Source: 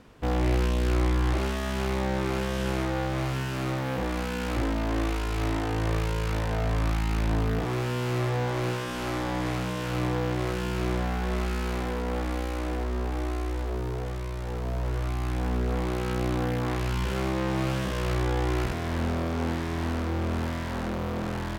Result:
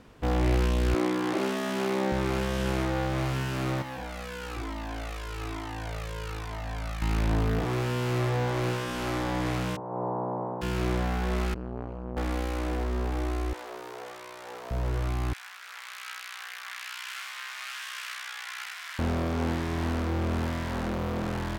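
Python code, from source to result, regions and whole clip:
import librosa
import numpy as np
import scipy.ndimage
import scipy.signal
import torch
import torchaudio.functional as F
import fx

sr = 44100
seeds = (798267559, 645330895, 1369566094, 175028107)

y = fx.chain(x, sr, fx.highpass(hz=220.0, slope=24),
    fx.low_shelf(hz=330.0, db=8.0), at=(0.94, 2.12))
y = fx.chain(y, sr, fx.low_shelf(hz=440.0, db=-7.0),
    fx.comb_cascade(direction='falling', hz=1.1), at=(3.82, 7.02))
y = fx.spec_clip(y, sr, under_db=21, at=(9.75, 10.61), fade=0.02)
y = fx.cheby1_bandpass(y, sr, low_hz=120.0, high_hz=980.0, order=4, at=(9.75, 10.61), fade=0.02)
y = fx.hum_notches(y, sr, base_hz=50, count=9, at=(9.75, 10.61), fade=0.02)
y = fx.chain(y, sr, fx.moving_average(points=25),
    fx.peak_eq(hz=140.0, db=-10.0, octaves=0.56),
    fx.transformer_sat(knee_hz=480.0), at=(11.54, 12.17))
y = fx.chain(y, sr, fx.highpass(hz=580.0, slope=12),
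    fx.quant_float(bits=6), at=(13.53, 14.71))
y = fx.chain(y, sr, fx.highpass(hz=1400.0, slope=24),
    fx.echo_single(ms=292, db=-6.5), at=(15.33, 18.99))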